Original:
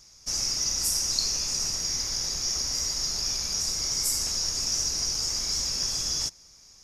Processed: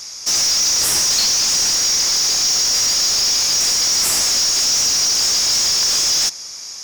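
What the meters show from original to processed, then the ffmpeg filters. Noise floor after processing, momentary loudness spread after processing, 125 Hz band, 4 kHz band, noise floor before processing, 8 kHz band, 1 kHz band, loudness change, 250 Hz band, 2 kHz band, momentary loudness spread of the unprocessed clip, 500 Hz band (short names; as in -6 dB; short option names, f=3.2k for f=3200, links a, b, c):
-32 dBFS, 1 LU, +2.0 dB, +12.5 dB, -54 dBFS, +12.0 dB, +14.0 dB, +12.0 dB, +7.5 dB, +16.0 dB, 3 LU, +11.5 dB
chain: -filter_complex "[0:a]highshelf=f=4.6k:g=9,asplit=2[a][b];[b]highpass=f=720:p=1,volume=27dB,asoftclip=type=tanh:threshold=-5dB[c];[a][c]amix=inputs=2:normalize=0,lowpass=f=3.8k:p=1,volume=-6dB"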